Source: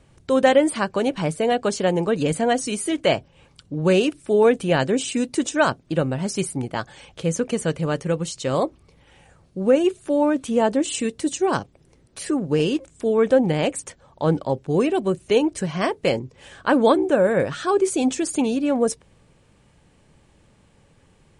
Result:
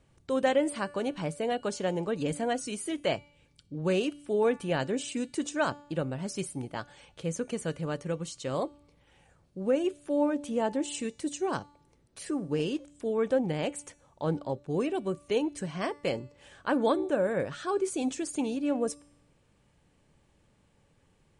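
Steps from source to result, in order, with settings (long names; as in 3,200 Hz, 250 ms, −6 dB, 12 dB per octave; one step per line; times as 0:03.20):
0:03.16–0:03.75: parametric band 960 Hz −11.5 dB 1.3 octaves
tuned comb filter 290 Hz, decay 0.75 s, mix 50%
level −4 dB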